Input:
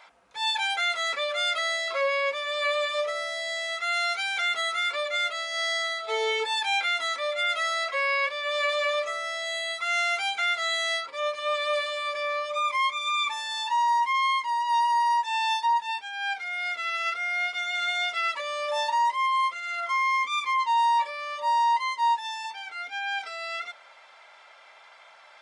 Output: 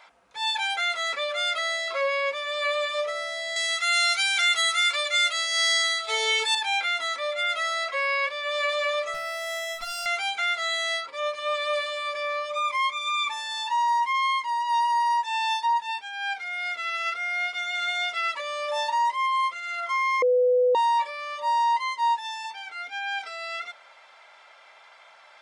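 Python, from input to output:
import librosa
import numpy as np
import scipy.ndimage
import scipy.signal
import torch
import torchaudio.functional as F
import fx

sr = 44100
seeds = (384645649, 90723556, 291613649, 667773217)

y = fx.tilt_eq(x, sr, slope=4.0, at=(3.56, 6.55))
y = fx.lower_of_two(y, sr, delay_ms=3.1, at=(9.14, 10.06))
y = fx.edit(y, sr, fx.bleep(start_s=20.22, length_s=0.53, hz=498.0, db=-17.0), tone=tone)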